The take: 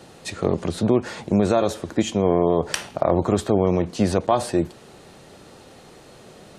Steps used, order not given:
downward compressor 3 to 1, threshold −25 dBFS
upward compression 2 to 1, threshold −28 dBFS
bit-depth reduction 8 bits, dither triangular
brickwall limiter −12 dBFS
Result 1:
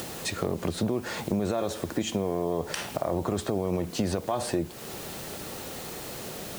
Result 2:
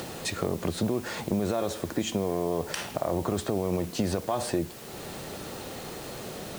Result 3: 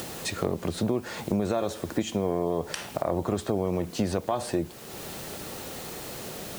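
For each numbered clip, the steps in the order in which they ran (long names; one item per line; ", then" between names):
brickwall limiter, then bit-depth reduction, then downward compressor, then upward compression
brickwall limiter, then upward compression, then downward compressor, then bit-depth reduction
bit-depth reduction, then upward compression, then downward compressor, then brickwall limiter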